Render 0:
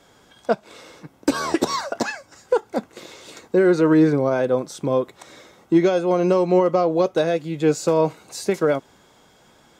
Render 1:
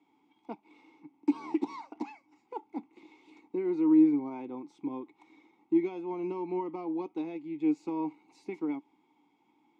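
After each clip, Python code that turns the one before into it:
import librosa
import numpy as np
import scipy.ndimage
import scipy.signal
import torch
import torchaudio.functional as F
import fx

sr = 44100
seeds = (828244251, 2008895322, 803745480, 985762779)

y = fx.vowel_filter(x, sr, vowel='u')
y = fx.low_shelf(y, sr, hz=64.0, db=-10.0)
y = y * librosa.db_to_amplitude(-2.5)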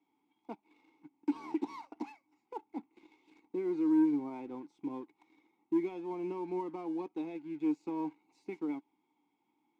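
y = fx.leveller(x, sr, passes=1)
y = y * librosa.db_to_amplitude(-7.0)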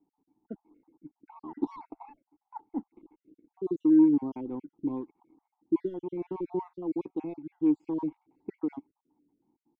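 y = fx.spec_dropout(x, sr, seeds[0], share_pct=46)
y = fx.env_lowpass(y, sr, base_hz=780.0, full_db=-34.0)
y = fx.tilt_eq(y, sr, slope=-3.5)
y = y * librosa.db_to_amplitude(1.5)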